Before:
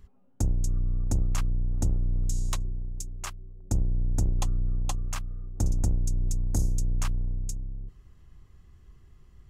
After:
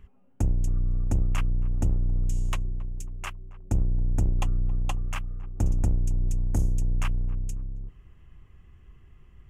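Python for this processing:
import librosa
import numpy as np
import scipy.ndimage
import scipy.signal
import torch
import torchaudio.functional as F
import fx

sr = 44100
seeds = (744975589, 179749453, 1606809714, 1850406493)

y = fx.high_shelf_res(x, sr, hz=3400.0, db=-6.5, q=3.0)
y = fx.echo_banded(y, sr, ms=272, feedback_pct=42, hz=650.0, wet_db=-18.5)
y = y * librosa.db_to_amplitude(1.5)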